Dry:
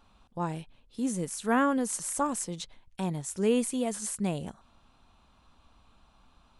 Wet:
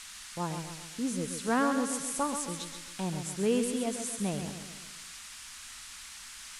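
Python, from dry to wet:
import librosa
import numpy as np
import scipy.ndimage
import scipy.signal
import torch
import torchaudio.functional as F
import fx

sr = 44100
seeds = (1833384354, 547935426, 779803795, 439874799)

y = fx.vibrato(x, sr, rate_hz=5.2, depth_cents=10.0)
y = fx.echo_feedback(y, sr, ms=132, feedback_pct=50, wet_db=-8.0)
y = fx.dmg_noise_band(y, sr, seeds[0], low_hz=1100.0, high_hz=10000.0, level_db=-44.0)
y = F.gain(torch.from_numpy(y), -2.5).numpy()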